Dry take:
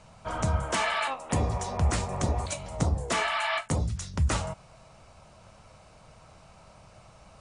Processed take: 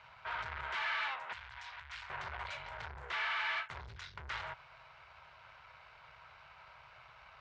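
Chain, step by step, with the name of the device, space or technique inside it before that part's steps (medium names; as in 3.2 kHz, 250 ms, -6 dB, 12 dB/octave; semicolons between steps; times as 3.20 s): scooped metal amplifier (valve stage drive 39 dB, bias 0.65; cabinet simulation 85–3600 Hz, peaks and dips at 95 Hz -7 dB, 190 Hz -9 dB, 380 Hz +9 dB, 960 Hz +7 dB, 1.5 kHz +9 dB, 2.1 kHz +5 dB; amplifier tone stack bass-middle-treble 10-0-10); 1.33–2.10 s: amplifier tone stack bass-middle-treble 10-0-10; trim +6.5 dB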